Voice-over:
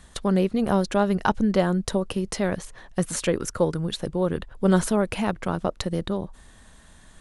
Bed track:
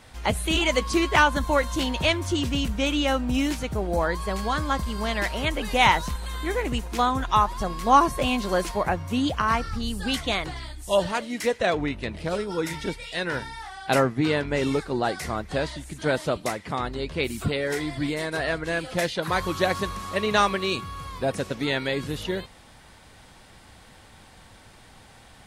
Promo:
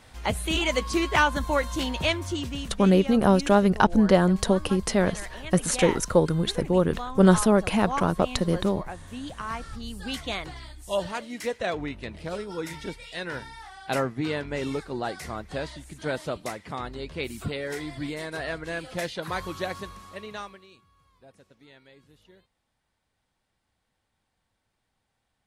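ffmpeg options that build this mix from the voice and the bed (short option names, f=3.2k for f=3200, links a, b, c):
-filter_complex "[0:a]adelay=2550,volume=2.5dB[a];[1:a]volume=5dB,afade=t=out:st=2.1:d=0.73:silence=0.298538,afade=t=in:st=9.23:d=1.04:silence=0.421697,afade=t=out:st=19.26:d=1.41:silence=0.0794328[b];[a][b]amix=inputs=2:normalize=0"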